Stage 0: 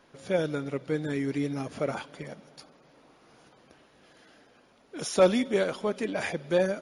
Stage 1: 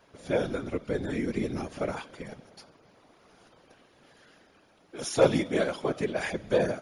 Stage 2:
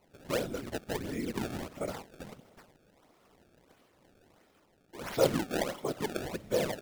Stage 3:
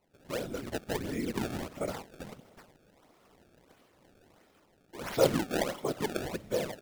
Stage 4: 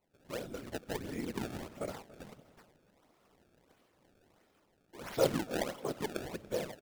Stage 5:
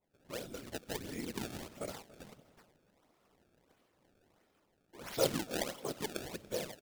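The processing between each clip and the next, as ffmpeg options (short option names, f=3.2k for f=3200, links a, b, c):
-af "bandreject=f=316.5:t=h:w=4,bandreject=f=633:t=h:w=4,bandreject=f=949.5:t=h:w=4,bandreject=f=1.266k:t=h:w=4,bandreject=f=1.5825k:t=h:w=4,bandreject=f=1.899k:t=h:w=4,bandreject=f=2.2155k:t=h:w=4,bandreject=f=2.532k:t=h:w=4,bandreject=f=2.8485k:t=h:w=4,bandreject=f=3.165k:t=h:w=4,bandreject=f=3.4815k:t=h:w=4,bandreject=f=3.798k:t=h:w=4,bandreject=f=4.1145k:t=h:w=4,bandreject=f=4.431k:t=h:w=4,bandreject=f=4.7475k:t=h:w=4,bandreject=f=5.064k:t=h:w=4,bandreject=f=5.3805k:t=h:w=4,bandreject=f=5.697k:t=h:w=4,bandreject=f=6.0135k:t=h:w=4,bandreject=f=6.33k:t=h:w=4,bandreject=f=6.6465k:t=h:w=4,bandreject=f=6.963k:t=h:w=4,bandreject=f=7.2795k:t=h:w=4,bandreject=f=7.596k:t=h:w=4,bandreject=f=7.9125k:t=h:w=4,bandreject=f=8.229k:t=h:w=4,bandreject=f=8.5455k:t=h:w=4,bandreject=f=8.862k:t=h:w=4,bandreject=f=9.1785k:t=h:w=4,bandreject=f=9.495k:t=h:w=4,bandreject=f=9.8115k:t=h:w=4,afftfilt=real='hypot(re,im)*cos(2*PI*random(0))':imag='hypot(re,im)*sin(2*PI*random(1))':win_size=512:overlap=0.75,volume=5.5dB"
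-af "bandreject=f=1.6k:w=12,acrusher=samples=25:mix=1:aa=0.000001:lfo=1:lforange=40:lforate=1.5,volume=-5dB"
-af "dynaudnorm=f=130:g=7:m=8.5dB,volume=-7dB"
-filter_complex "[0:a]asplit=2[a][b];[b]aeval=exprs='val(0)*gte(abs(val(0)),0.0376)':c=same,volume=-12dB[c];[a][c]amix=inputs=2:normalize=0,asplit=2[d][e];[e]adelay=285,lowpass=f=3.5k:p=1,volume=-19.5dB,asplit=2[f][g];[g]adelay=285,lowpass=f=3.5k:p=1,volume=0.41,asplit=2[h][i];[i]adelay=285,lowpass=f=3.5k:p=1,volume=0.41[j];[d][f][h][j]amix=inputs=4:normalize=0,volume=-6dB"
-af "adynamicequalizer=threshold=0.002:dfrequency=2500:dqfactor=0.7:tfrequency=2500:tqfactor=0.7:attack=5:release=100:ratio=0.375:range=3.5:mode=boostabove:tftype=highshelf,volume=-3dB"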